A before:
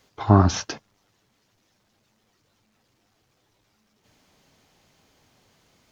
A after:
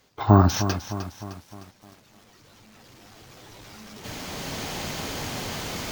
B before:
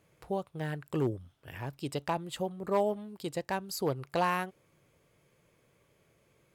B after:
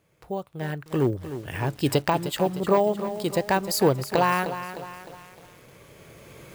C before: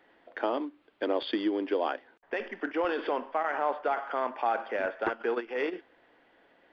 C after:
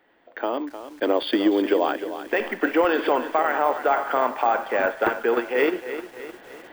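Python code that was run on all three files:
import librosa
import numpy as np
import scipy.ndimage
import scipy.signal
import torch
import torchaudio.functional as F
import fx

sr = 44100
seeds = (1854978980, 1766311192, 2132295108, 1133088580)

y = fx.recorder_agc(x, sr, target_db=-10.0, rise_db_per_s=7.1, max_gain_db=30)
y = np.repeat(y[::2], 2)[:len(y)]
y = fx.echo_crushed(y, sr, ms=306, feedback_pct=55, bits=7, wet_db=-11.0)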